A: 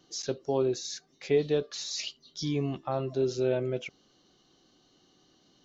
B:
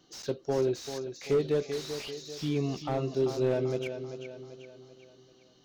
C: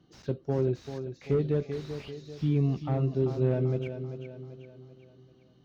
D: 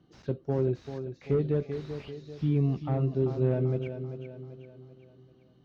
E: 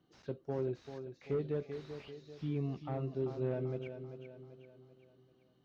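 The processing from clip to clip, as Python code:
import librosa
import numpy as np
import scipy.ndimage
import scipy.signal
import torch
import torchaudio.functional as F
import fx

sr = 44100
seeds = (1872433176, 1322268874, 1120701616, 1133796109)

y1 = fx.echo_feedback(x, sr, ms=389, feedback_pct=47, wet_db=-10.0)
y1 = fx.slew_limit(y1, sr, full_power_hz=37.0)
y2 = scipy.signal.sosfilt(scipy.signal.butter(2, 42.0, 'highpass', fs=sr, output='sos'), y1)
y2 = fx.bass_treble(y2, sr, bass_db=13, treble_db=-14)
y2 = F.gain(torch.from_numpy(y2), -3.5).numpy()
y3 = fx.lowpass(y2, sr, hz=3100.0, slope=6)
y4 = fx.low_shelf(y3, sr, hz=270.0, db=-8.5)
y4 = F.gain(torch.from_numpy(y4), -5.0).numpy()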